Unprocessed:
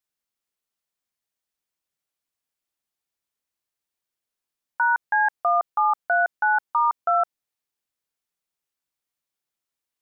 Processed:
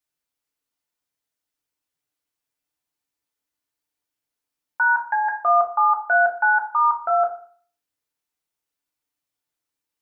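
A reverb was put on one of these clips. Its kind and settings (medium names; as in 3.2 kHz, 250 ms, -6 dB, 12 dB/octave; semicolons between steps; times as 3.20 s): FDN reverb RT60 0.48 s, low-frequency decay 1.1×, high-frequency decay 0.65×, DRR 0.5 dB; trim -1 dB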